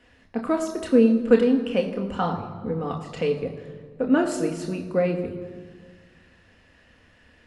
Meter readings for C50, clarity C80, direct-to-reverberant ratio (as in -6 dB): 9.5 dB, 10.5 dB, 3.0 dB